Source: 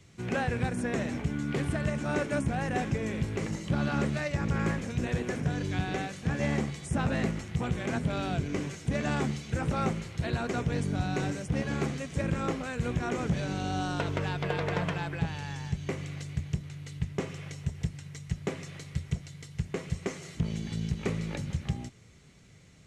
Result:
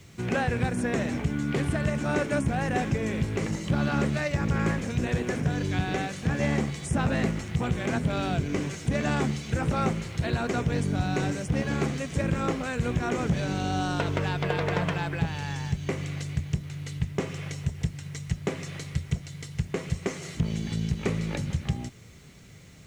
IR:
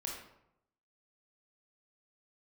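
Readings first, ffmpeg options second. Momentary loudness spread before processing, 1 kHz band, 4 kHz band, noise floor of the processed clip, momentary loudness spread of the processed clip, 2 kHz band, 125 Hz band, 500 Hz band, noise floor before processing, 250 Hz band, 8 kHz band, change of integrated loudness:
7 LU, +3.5 dB, +4.0 dB, -47 dBFS, 7 LU, +3.5 dB, +3.5 dB, +3.5 dB, -53 dBFS, +3.5 dB, +4.0 dB, +3.5 dB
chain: -filter_complex "[0:a]asplit=2[s0][s1];[s1]acompressor=threshold=0.0141:ratio=6,volume=0.75[s2];[s0][s2]amix=inputs=2:normalize=0,acrusher=bits=10:mix=0:aa=0.000001,volume=1.19"

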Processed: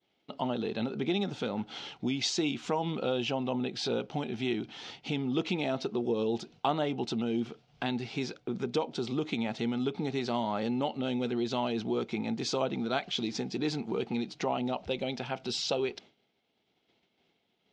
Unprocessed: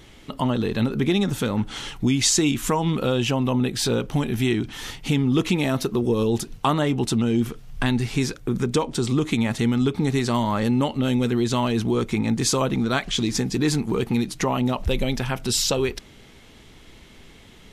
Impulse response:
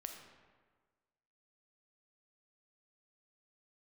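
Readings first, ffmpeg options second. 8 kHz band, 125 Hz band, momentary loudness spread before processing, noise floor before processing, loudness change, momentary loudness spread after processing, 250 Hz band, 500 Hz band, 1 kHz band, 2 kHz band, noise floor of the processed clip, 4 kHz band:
-17.5 dB, -15.5 dB, 5 LU, -48 dBFS, -9.5 dB, 5 LU, -10.0 dB, -7.0 dB, -7.0 dB, -9.5 dB, -76 dBFS, -8.0 dB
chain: -af "agate=range=0.0224:threshold=0.0158:ratio=3:detection=peak,highpass=210,equalizer=f=280:t=q:w=4:g=-3,equalizer=f=730:t=q:w=4:g=6,equalizer=f=1100:t=q:w=4:g=-6,equalizer=f=1800:t=q:w=4:g=-7,lowpass=f=5100:w=0.5412,lowpass=f=5100:w=1.3066,volume=0.447"

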